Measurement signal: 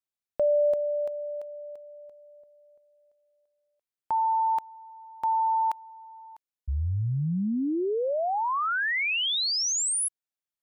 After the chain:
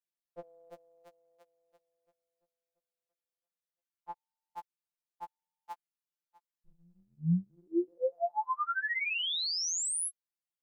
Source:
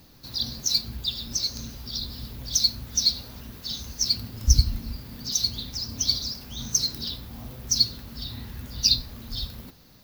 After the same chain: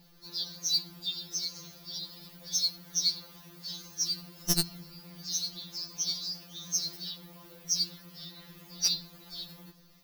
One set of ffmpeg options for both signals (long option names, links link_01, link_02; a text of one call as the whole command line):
ffmpeg -i in.wav -af "aeval=exprs='(mod(1.88*val(0)+1,2)-1)/1.88':channel_layout=same,afftfilt=real='re*2.83*eq(mod(b,8),0)':imag='im*2.83*eq(mod(b,8),0)':win_size=2048:overlap=0.75,volume=-4dB" out.wav